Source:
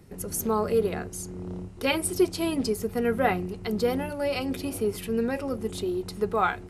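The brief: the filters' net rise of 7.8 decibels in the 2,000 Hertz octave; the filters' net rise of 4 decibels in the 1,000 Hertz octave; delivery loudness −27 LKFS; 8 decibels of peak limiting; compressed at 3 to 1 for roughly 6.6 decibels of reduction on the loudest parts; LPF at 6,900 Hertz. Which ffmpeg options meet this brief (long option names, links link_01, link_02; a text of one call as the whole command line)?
ffmpeg -i in.wav -af "lowpass=6900,equalizer=frequency=1000:width_type=o:gain=3,equalizer=frequency=2000:width_type=o:gain=9,acompressor=threshold=-24dB:ratio=3,volume=4dB,alimiter=limit=-15.5dB:level=0:latency=1" out.wav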